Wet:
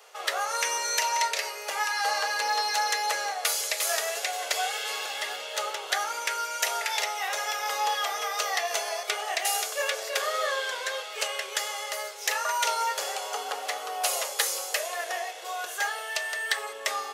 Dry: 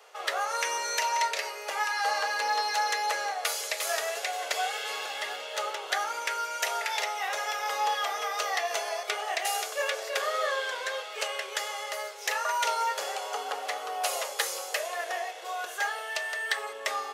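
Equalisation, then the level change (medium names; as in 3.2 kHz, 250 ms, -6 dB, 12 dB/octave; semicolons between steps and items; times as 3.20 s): treble shelf 3.9 kHz +6.5 dB; 0.0 dB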